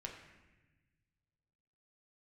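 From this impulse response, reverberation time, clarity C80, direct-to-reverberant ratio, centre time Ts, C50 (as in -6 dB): 1.1 s, 7.0 dB, 0.0 dB, 39 ms, 5.5 dB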